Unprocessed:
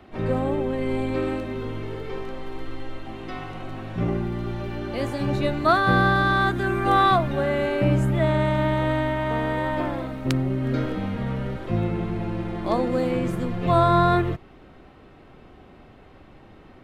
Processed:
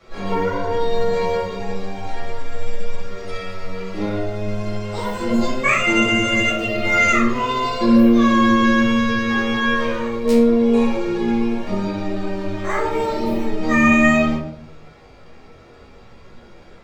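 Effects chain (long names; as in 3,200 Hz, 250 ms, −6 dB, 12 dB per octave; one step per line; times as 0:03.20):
pitch shifter +10 semitones
rectangular room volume 100 cubic metres, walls mixed, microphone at 2.3 metres
level −7.5 dB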